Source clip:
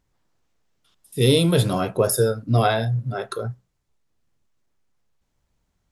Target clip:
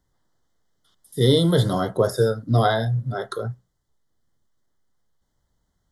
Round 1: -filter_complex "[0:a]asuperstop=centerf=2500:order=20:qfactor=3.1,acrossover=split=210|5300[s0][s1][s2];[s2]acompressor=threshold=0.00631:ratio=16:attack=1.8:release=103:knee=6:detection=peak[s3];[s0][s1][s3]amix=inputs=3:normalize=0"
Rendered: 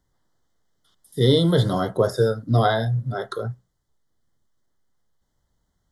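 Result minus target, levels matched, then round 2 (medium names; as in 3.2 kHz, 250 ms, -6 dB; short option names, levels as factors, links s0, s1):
compression: peak gain reduction +7.5 dB
-filter_complex "[0:a]asuperstop=centerf=2500:order=20:qfactor=3.1,acrossover=split=210|5300[s0][s1][s2];[s2]acompressor=threshold=0.0158:ratio=16:attack=1.8:release=103:knee=6:detection=peak[s3];[s0][s1][s3]amix=inputs=3:normalize=0"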